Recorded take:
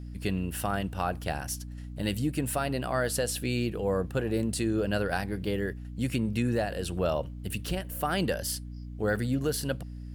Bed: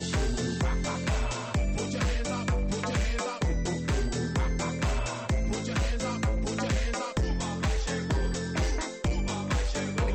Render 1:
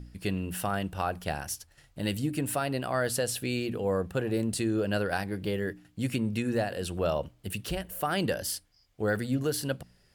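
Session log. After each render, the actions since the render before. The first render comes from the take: de-hum 60 Hz, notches 5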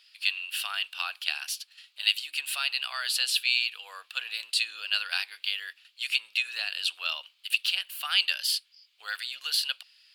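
HPF 1200 Hz 24 dB/oct; band shelf 3400 Hz +14.5 dB 1.2 oct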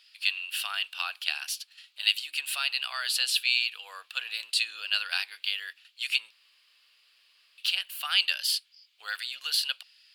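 6.31–7.58 room tone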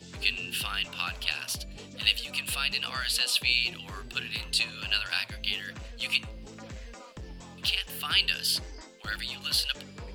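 add bed -15 dB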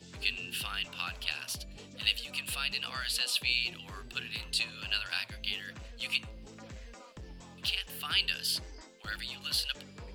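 gain -4.5 dB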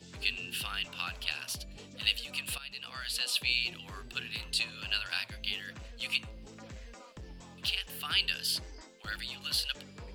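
2.58–3.36 fade in, from -14 dB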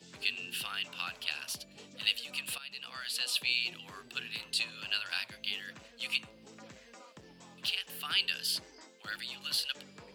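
Chebyshev high-pass 160 Hz, order 2; low shelf 280 Hz -5.5 dB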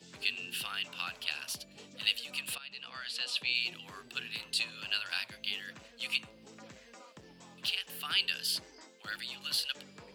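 2.55–3.55 air absorption 66 m

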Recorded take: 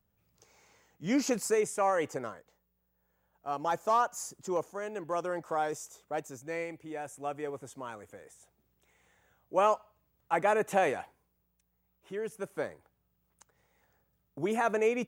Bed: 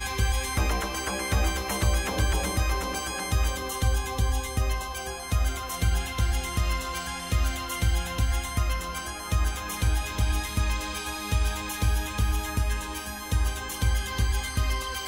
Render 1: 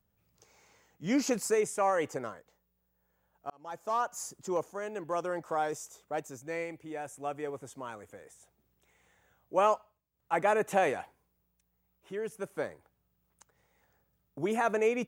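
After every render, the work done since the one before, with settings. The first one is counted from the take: 3.5–4.24 fade in; 9.75–10.37 dip -14.5 dB, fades 0.27 s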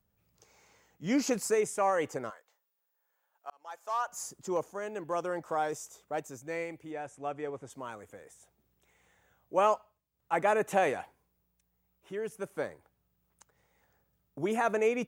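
2.3–4.08 HPF 780 Hz; 6.91–7.7 air absorption 66 m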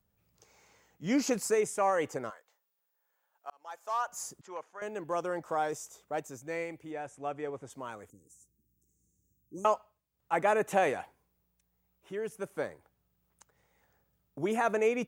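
4.41–4.82 band-pass 1800 Hz, Q 1.1; 8.1–9.65 elliptic band-stop 310–6300 Hz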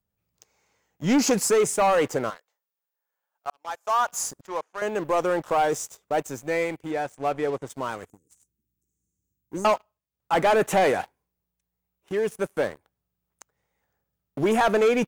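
sample leveller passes 3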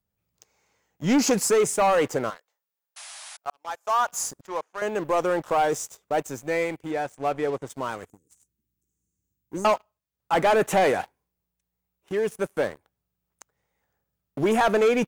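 2.96–3.37 painted sound noise 580–11000 Hz -42 dBFS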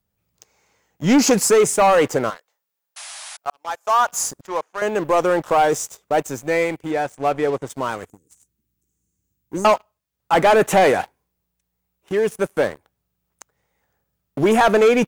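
gain +6 dB

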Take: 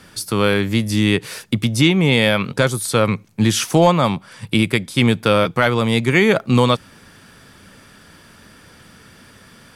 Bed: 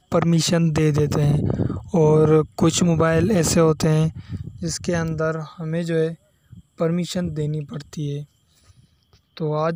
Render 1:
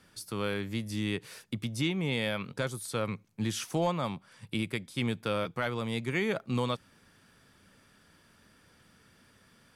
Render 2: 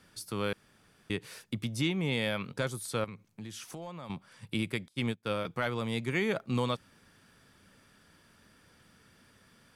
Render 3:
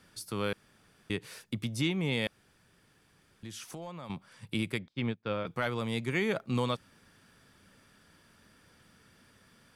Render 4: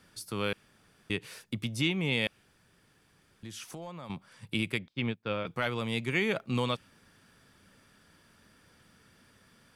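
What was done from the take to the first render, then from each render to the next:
gain -16 dB
0.53–1.1 room tone; 3.04–4.1 compressor 3:1, threshold -43 dBFS; 4.88–5.45 upward expander 2.5:1, over -43 dBFS
2.27–3.43 room tone; 4.78–5.47 air absorption 190 m
dynamic EQ 2700 Hz, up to +6 dB, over -50 dBFS, Q 2.1

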